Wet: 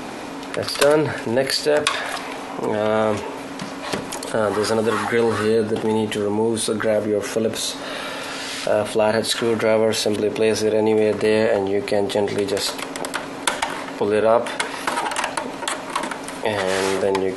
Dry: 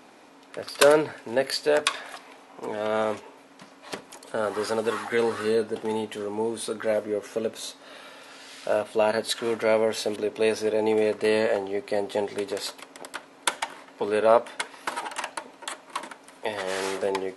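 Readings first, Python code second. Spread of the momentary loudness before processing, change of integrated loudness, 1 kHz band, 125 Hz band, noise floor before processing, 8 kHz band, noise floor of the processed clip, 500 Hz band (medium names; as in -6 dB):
16 LU, +5.0 dB, +6.0 dB, +13.0 dB, -52 dBFS, +7.5 dB, -32 dBFS, +5.5 dB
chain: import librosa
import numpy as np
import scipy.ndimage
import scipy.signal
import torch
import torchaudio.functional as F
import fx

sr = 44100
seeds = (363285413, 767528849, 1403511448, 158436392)

y = fx.low_shelf(x, sr, hz=160.0, db=11.5)
y = fx.env_flatten(y, sr, amount_pct=50)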